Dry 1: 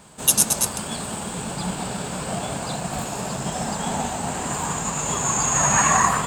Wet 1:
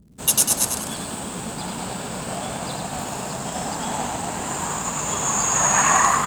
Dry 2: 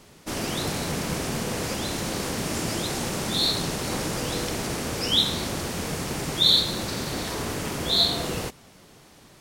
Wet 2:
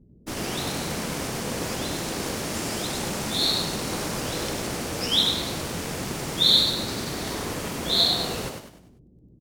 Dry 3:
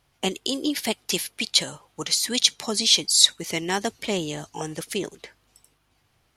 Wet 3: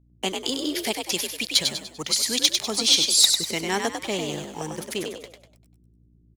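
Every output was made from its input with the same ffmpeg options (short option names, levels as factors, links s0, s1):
-filter_complex "[0:a]acrossover=split=350[s0][s1];[s0]alimiter=level_in=1.68:limit=0.0631:level=0:latency=1:release=106,volume=0.596[s2];[s1]aeval=exprs='sgn(val(0))*max(abs(val(0))-0.00631,0)':c=same[s3];[s2][s3]amix=inputs=2:normalize=0,aeval=exprs='val(0)+0.00126*(sin(2*PI*60*n/s)+sin(2*PI*2*60*n/s)/2+sin(2*PI*3*60*n/s)/3+sin(2*PI*4*60*n/s)/4+sin(2*PI*5*60*n/s)/5)':c=same,volume=2.82,asoftclip=hard,volume=0.355,asplit=6[s4][s5][s6][s7][s8][s9];[s5]adelay=98,afreqshift=53,volume=0.562[s10];[s6]adelay=196,afreqshift=106,volume=0.224[s11];[s7]adelay=294,afreqshift=159,volume=0.0902[s12];[s8]adelay=392,afreqshift=212,volume=0.0359[s13];[s9]adelay=490,afreqshift=265,volume=0.0145[s14];[s4][s10][s11][s12][s13][s14]amix=inputs=6:normalize=0"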